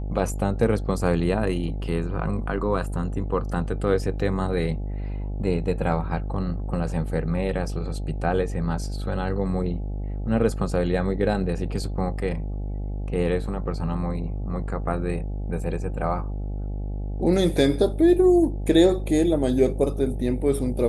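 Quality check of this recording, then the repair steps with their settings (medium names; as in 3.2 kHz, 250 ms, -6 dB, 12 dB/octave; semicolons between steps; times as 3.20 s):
buzz 50 Hz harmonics 17 -29 dBFS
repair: de-hum 50 Hz, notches 17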